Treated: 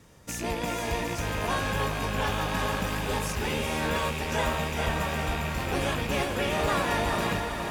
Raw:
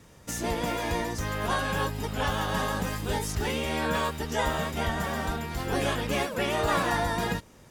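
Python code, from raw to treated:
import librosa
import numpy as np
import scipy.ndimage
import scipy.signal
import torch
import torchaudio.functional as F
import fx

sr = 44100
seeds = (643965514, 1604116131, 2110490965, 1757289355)

p1 = fx.rattle_buzz(x, sr, strikes_db=-33.0, level_db=-25.0)
p2 = p1 + fx.echo_diffused(p1, sr, ms=454, feedback_pct=58, wet_db=-5, dry=0)
y = F.gain(torch.from_numpy(p2), -1.5).numpy()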